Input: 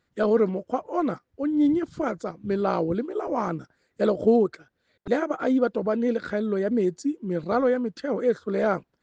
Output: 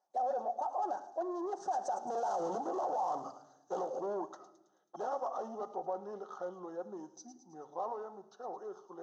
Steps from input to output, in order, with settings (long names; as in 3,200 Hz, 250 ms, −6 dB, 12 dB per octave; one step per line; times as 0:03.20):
source passing by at 0:02.47, 55 m/s, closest 10 metres
parametric band 1,600 Hz +4 dB 2 octaves
in parallel at +2 dB: downward compressor, threshold −38 dBFS, peak gain reduction 16 dB
on the sum: mid-hump overdrive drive 34 dB, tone 1,200 Hz, clips at −10.5 dBFS
pair of resonant band-passes 2,200 Hz, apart 3 octaves
rectangular room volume 2,800 cubic metres, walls furnished, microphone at 0.96 metres
brickwall limiter −27 dBFS, peak gain reduction 10.5 dB
on a send: delay with a high-pass on its return 108 ms, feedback 56%, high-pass 4,600 Hz, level −7 dB